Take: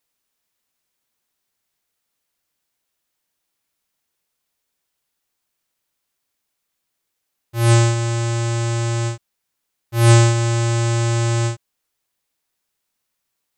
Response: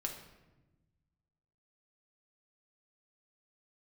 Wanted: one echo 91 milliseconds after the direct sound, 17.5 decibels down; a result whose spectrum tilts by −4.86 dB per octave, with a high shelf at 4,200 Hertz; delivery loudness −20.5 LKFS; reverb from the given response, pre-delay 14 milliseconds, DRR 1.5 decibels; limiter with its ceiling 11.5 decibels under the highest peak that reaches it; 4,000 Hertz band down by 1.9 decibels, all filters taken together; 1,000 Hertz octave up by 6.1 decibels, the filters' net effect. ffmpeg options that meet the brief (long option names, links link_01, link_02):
-filter_complex "[0:a]equalizer=frequency=1000:width_type=o:gain=7.5,equalizer=frequency=4000:width_type=o:gain=-5,highshelf=frequency=4200:gain=3.5,alimiter=limit=-11dB:level=0:latency=1,aecho=1:1:91:0.133,asplit=2[link_01][link_02];[1:a]atrim=start_sample=2205,adelay=14[link_03];[link_02][link_03]afir=irnorm=-1:irlink=0,volume=-1.5dB[link_04];[link_01][link_04]amix=inputs=2:normalize=0,volume=2dB"